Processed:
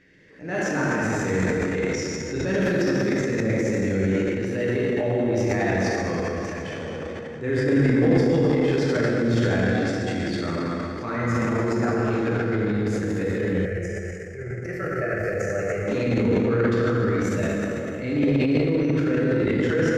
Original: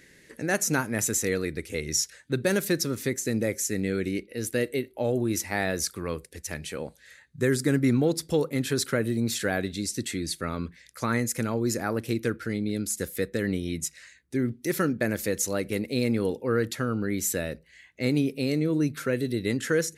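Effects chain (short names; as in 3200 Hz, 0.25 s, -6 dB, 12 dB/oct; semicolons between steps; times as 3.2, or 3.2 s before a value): air absorption 200 m; notch 4000 Hz, Q 9.9; plate-style reverb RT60 3.6 s, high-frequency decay 0.7×, DRR -7.5 dB; transient shaper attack -6 dB, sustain +9 dB; 13.65–15.88 fixed phaser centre 970 Hz, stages 6; gain -3 dB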